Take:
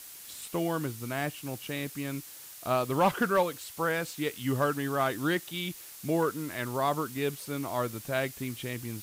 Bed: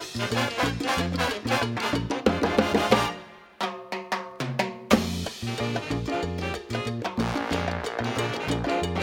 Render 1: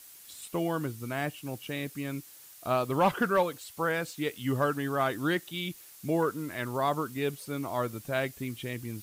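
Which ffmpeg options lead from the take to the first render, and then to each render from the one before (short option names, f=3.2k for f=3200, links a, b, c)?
-af "afftdn=nr=6:nf=-47"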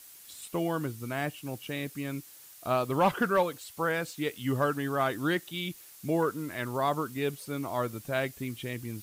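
-af anull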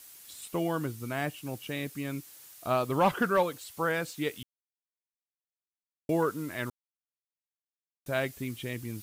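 -filter_complex "[0:a]asplit=5[a][b][c][d][e];[a]atrim=end=4.43,asetpts=PTS-STARTPTS,afade=t=out:st=4.426:d=0.004:c=hsin[f];[b]atrim=start=4.43:end=6.09,asetpts=PTS-STARTPTS,volume=0[g];[c]atrim=start=6.09:end=6.7,asetpts=PTS-STARTPTS,afade=t=in:d=0.004:c=hsin,afade=t=out:st=0.606:d=0.004:c=hsin[h];[d]atrim=start=6.7:end=8.06,asetpts=PTS-STARTPTS,volume=0[i];[e]atrim=start=8.06,asetpts=PTS-STARTPTS,afade=t=in:d=0.004:c=hsin[j];[f][g][h][i][j]concat=n=5:v=0:a=1"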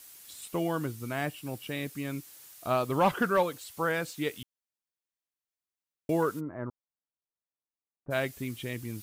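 -filter_complex "[0:a]asettb=1/sr,asplit=3[a][b][c];[a]atrim=end=1.284[d];[b]atrim=start=1.28:end=1.82,asetpts=PTS-STARTPTS,afade=t=in:d=0.004:c=qsin,afade=t=out:st=0.536:d=0.004:c=qsin,bandreject=f=6.4k:w=12[e];[c]atrim=start=1.816[f];[d][e]acrossfade=d=0.004:c1=hsin:c2=qsin[g];[g][f]acrossfade=d=0.004:c1=qsin:c2=hsin,asplit=3[h][i][j];[h]afade=t=out:st=6.39:d=0.02[k];[i]lowpass=f=1.2k:w=0.5412,lowpass=f=1.2k:w=1.3066,afade=t=in:st=6.39:d=0.02,afade=t=out:st=8.1:d=0.02[l];[j]afade=t=in:st=8.1:d=0.02[m];[k][l][m]amix=inputs=3:normalize=0"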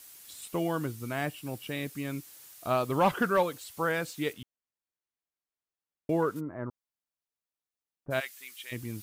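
-filter_complex "[0:a]asettb=1/sr,asplit=3[a][b][c];[a]atrim=end=4.334[d];[b]atrim=start=4.33:end=6.36,asetpts=PTS-STARTPTS,afade=t=in:d=0.004:c=qsin,afade=t=out:st=2.026:d=0.004:c=qsin,highshelf=f=3.4k:g=-9[e];[c]atrim=start=6.356[f];[d][e]acrossfade=d=0.004:c1=hsin:c2=qsin[g];[g][f]acrossfade=d=0.004:c1=qsin:c2=hsin,asplit=3[h][i][j];[h]afade=t=out:st=8.19:d=0.02[k];[i]highpass=1.5k,afade=t=in:st=8.19:d=0.02,afade=t=out:st=8.71:d=0.02[l];[j]afade=t=in:st=8.71:d=0.02[m];[k][l][m]amix=inputs=3:normalize=0"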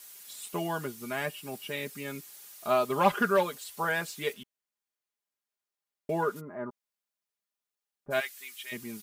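-af "lowshelf=f=180:g=-11,aecho=1:1:4.9:0.75"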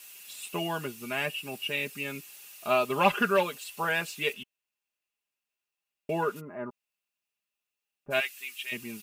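-af "equalizer=f=2.7k:t=o:w=0.29:g=15,bandreject=f=3k:w=25"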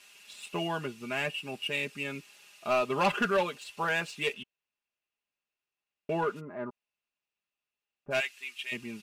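-af "asoftclip=type=tanh:threshold=-19dB,adynamicsmooth=sensitivity=8:basefreq=5.5k"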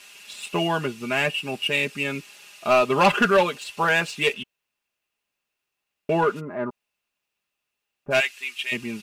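-af "volume=9dB"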